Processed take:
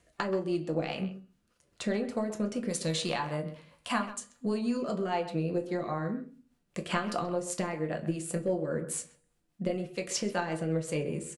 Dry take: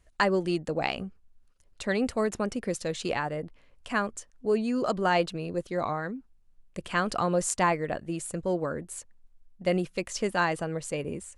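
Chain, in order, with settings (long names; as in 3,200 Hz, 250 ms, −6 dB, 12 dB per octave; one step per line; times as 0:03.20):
high-pass filter 130 Hz 12 dB per octave
harmonic and percussive parts rebalanced harmonic +6 dB
0:02.69–0:04.77: graphic EQ with 15 bands 400 Hz −7 dB, 1,000 Hz +7 dB, 4,000 Hz +6 dB, 10,000 Hz +8 dB
downward compressor 16 to 1, threshold −31 dBFS, peak gain reduction 17 dB
rotating-speaker cabinet horn 5 Hz
tuned comb filter 240 Hz, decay 0.66 s, harmonics all, mix 40%
far-end echo of a speakerphone 130 ms, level −13 dB
rectangular room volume 120 cubic metres, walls furnished, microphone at 0.79 metres
level +8 dB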